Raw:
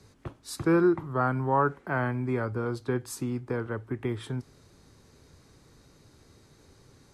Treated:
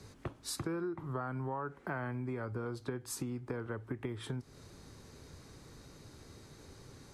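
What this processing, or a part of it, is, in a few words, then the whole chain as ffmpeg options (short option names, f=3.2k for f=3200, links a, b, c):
serial compression, leveller first: -af "acompressor=threshold=-27dB:ratio=2.5,acompressor=threshold=-40dB:ratio=4,volume=3dB"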